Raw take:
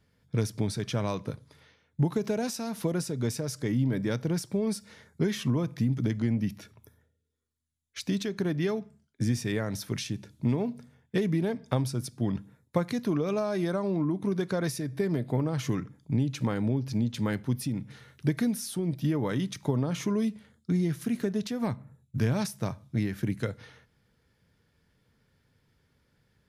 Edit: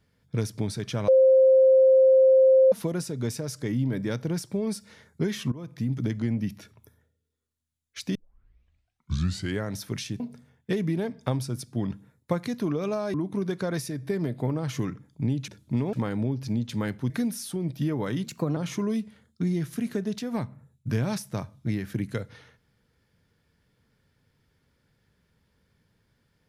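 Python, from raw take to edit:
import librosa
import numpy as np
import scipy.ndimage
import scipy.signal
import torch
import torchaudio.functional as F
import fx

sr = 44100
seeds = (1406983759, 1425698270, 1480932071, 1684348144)

y = fx.edit(x, sr, fx.bleep(start_s=1.08, length_s=1.64, hz=526.0, db=-13.5),
    fx.fade_in_from(start_s=5.52, length_s=0.42, floor_db=-17.5),
    fx.tape_start(start_s=8.15, length_s=1.51),
    fx.move(start_s=10.2, length_s=0.45, to_s=16.38),
    fx.cut(start_s=13.59, length_s=0.45),
    fx.cut(start_s=17.55, length_s=0.78),
    fx.speed_span(start_s=19.47, length_s=0.38, speed=1.17), tone=tone)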